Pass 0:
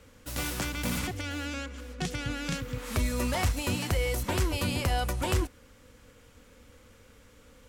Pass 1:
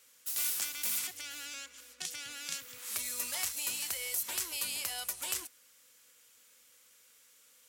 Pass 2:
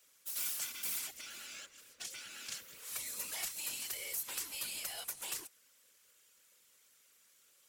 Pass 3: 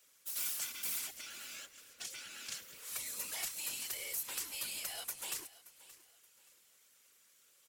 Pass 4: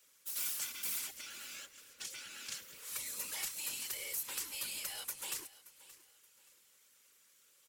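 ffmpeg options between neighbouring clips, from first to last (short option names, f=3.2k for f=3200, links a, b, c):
-af "aderivative,volume=3.5dB"
-af "afftfilt=real='hypot(re,im)*cos(2*PI*random(0))':imag='hypot(re,im)*sin(2*PI*random(1))':win_size=512:overlap=0.75,acrusher=bits=4:mode=log:mix=0:aa=0.000001,volume=1dB"
-af "aecho=1:1:576|1152|1728:0.126|0.0403|0.0129"
-af "asuperstop=centerf=690:order=4:qfactor=6.3"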